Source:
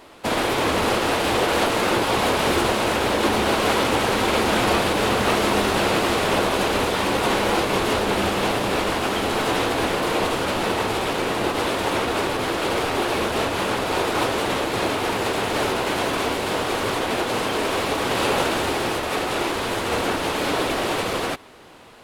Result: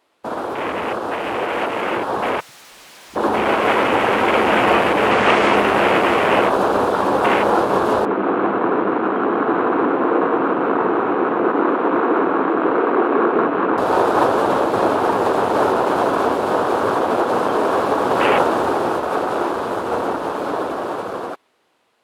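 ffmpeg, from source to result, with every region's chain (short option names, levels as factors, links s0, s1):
-filter_complex "[0:a]asettb=1/sr,asplit=3[s0][s1][s2];[s0]atrim=end=2.404[s3];[s1]atrim=start=2.4:end=3.16,asetpts=PTS-STARTPTS,afade=t=in:d=0.004:c=qsin,afade=t=out:st=0.756:d=0.004:c=qsin,highpass=130,bandreject=f=60:t=h:w=6,bandreject=f=120:t=h:w=6,bandreject=f=180:t=h:w=6,bandreject=f=240:t=h:w=6,bandreject=f=300:t=h:w=6,bandreject=f=360:t=h:w=6,bandreject=f=420:t=h:w=6,bandreject=f=480:t=h:w=6,bandreject=f=540:t=h:w=6,aeval=exprs='0.0562*(abs(mod(val(0)/0.0562+3,4)-2)-1)':c=same[s4];[s2]atrim=start=3.156[s5];[s3][s4]acrossfade=d=0.004:c1=hsin:c2=qsin[s6];[s6][s5]acrossfade=d=0.004:c1=qsin:c2=hsin,asettb=1/sr,asplit=3[s7][s8][s9];[s7]atrim=end=5.114[s10];[s8]atrim=start=5.11:end=5.56,asetpts=PTS-STARTPTS,afade=t=in:d=0.004:c=qsin,afade=t=out:st=0.446:d=0.004:c=qsin,lowpass=6400,highshelf=f=4800:g=10.5[s11];[s9]atrim=start=5.556[s12];[s10][s11]acrossfade=d=0.004:c1=hsin:c2=qsin[s13];[s13][s12]acrossfade=d=0.004:c1=qsin:c2=hsin,asettb=1/sr,asplit=3[s14][s15][s16];[s14]atrim=end=8.054[s17];[s15]atrim=start=8.05:end=13.78,asetpts=PTS-STARTPTS,afade=t=in:d=0.004:c=qsin,afade=t=out:st=5.726:d=0.004:c=qsin,highpass=190,equalizer=f=300:t=q:w=4:g=4,equalizer=f=590:t=q:w=4:g=-8,equalizer=f=850:t=q:w=4:g=-6,lowpass=f=2400:w=0.5412,lowpass=f=2400:w=1.3066,aecho=1:1:181:0.708,atrim=end_sample=252693[s18];[s16]atrim=start=13.776[s19];[s17][s18]acrossfade=d=0.004:c1=hsin:c2=qsin[s20];[s20][s19]acrossfade=d=0.004:c1=qsin:c2=hsin,afwtdn=0.0708,highpass=f=340:p=1,dynaudnorm=f=700:g=9:m=3.76"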